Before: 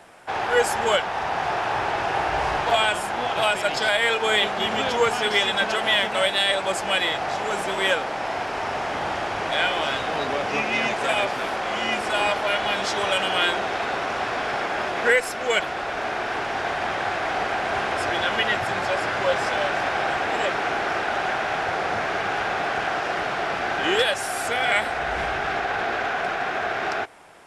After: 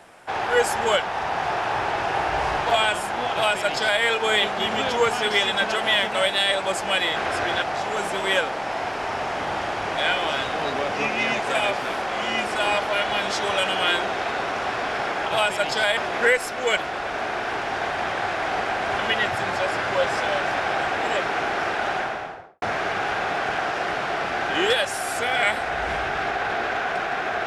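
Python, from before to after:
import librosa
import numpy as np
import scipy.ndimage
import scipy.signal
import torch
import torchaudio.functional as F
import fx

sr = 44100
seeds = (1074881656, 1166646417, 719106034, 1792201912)

y = fx.studio_fade_out(x, sr, start_s=21.18, length_s=0.73)
y = fx.edit(y, sr, fx.duplicate(start_s=3.31, length_s=0.71, to_s=14.8),
    fx.move(start_s=17.82, length_s=0.46, to_s=7.16), tone=tone)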